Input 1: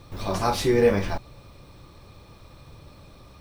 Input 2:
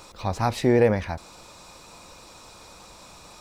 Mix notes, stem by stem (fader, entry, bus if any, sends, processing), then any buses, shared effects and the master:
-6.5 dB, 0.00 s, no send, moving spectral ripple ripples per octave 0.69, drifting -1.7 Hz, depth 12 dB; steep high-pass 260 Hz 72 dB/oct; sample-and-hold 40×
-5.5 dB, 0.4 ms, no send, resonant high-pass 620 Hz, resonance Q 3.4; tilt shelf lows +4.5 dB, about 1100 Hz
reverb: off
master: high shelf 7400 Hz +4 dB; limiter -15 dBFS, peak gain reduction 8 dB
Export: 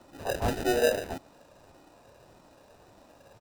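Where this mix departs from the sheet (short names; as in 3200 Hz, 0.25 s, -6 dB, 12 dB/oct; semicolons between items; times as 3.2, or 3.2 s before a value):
stem 2 -5.5 dB -> -16.5 dB; master: missing high shelf 7400 Hz +4 dB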